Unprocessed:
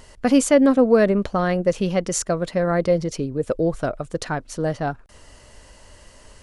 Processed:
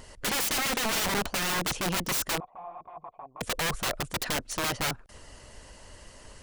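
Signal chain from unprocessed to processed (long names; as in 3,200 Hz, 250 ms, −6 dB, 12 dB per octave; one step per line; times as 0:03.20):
harmonic and percussive parts rebalanced harmonic −5 dB
wrap-around overflow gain 24 dB
0:02.40–0:03.41: formant resonators in series a
level +1 dB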